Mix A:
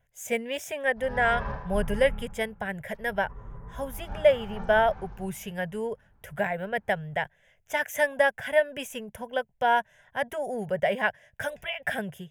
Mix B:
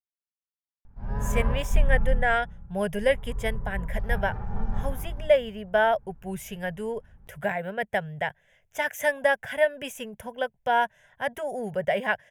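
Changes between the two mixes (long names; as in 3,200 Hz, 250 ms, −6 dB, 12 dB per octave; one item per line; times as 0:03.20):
speech: entry +1.05 s
background: add spectral tilt −2.5 dB per octave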